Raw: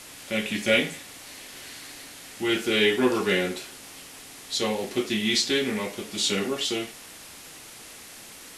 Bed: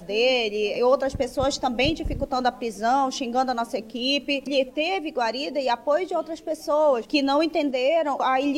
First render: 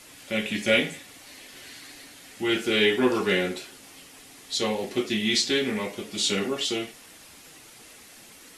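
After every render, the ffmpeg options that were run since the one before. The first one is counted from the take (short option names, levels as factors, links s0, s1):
-af "afftdn=nr=6:nf=-45"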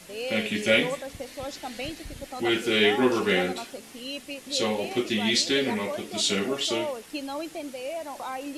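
-filter_complex "[1:a]volume=0.237[s0];[0:a][s0]amix=inputs=2:normalize=0"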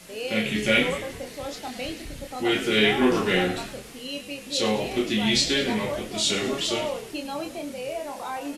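-filter_complex "[0:a]asplit=2[s0][s1];[s1]adelay=28,volume=0.562[s2];[s0][s2]amix=inputs=2:normalize=0,asplit=6[s3][s4][s5][s6][s7][s8];[s4]adelay=104,afreqshift=-78,volume=0.224[s9];[s5]adelay=208,afreqshift=-156,volume=0.116[s10];[s6]adelay=312,afreqshift=-234,volume=0.0603[s11];[s7]adelay=416,afreqshift=-312,volume=0.0316[s12];[s8]adelay=520,afreqshift=-390,volume=0.0164[s13];[s3][s9][s10][s11][s12][s13]amix=inputs=6:normalize=0"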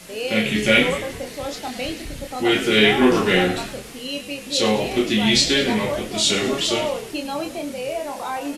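-af "volume=1.78"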